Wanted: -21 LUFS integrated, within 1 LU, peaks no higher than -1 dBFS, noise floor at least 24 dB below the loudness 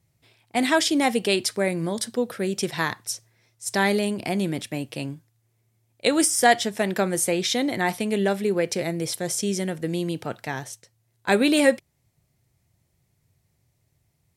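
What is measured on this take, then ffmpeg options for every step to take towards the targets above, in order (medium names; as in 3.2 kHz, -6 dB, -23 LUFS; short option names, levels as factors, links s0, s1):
loudness -24.0 LUFS; peak level -5.5 dBFS; loudness target -21.0 LUFS
-> -af "volume=1.41"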